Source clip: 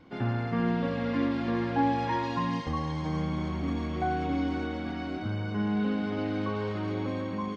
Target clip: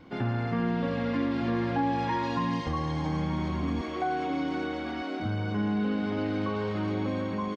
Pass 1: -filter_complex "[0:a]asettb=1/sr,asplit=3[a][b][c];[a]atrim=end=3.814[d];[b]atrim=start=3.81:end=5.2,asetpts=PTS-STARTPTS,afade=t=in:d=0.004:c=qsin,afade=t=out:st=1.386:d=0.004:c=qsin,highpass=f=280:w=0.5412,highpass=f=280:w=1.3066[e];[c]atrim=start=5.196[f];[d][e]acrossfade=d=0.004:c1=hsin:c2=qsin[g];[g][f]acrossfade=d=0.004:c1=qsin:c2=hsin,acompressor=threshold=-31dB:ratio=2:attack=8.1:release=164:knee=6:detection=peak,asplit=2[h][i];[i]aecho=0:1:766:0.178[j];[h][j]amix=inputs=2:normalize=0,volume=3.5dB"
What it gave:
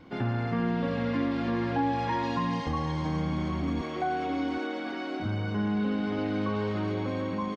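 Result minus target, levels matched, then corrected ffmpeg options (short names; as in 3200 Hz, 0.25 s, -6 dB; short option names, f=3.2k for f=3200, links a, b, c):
echo 0.442 s early
-filter_complex "[0:a]asettb=1/sr,asplit=3[a][b][c];[a]atrim=end=3.814[d];[b]atrim=start=3.81:end=5.2,asetpts=PTS-STARTPTS,afade=t=in:d=0.004:c=qsin,afade=t=out:st=1.386:d=0.004:c=qsin,highpass=f=280:w=0.5412,highpass=f=280:w=1.3066[e];[c]atrim=start=5.196[f];[d][e]acrossfade=d=0.004:c1=hsin:c2=qsin[g];[g][f]acrossfade=d=0.004:c1=qsin:c2=hsin,acompressor=threshold=-31dB:ratio=2:attack=8.1:release=164:knee=6:detection=peak,asplit=2[h][i];[i]aecho=0:1:1208:0.178[j];[h][j]amix=inputs=2:normalize=0,volume=3.5dB"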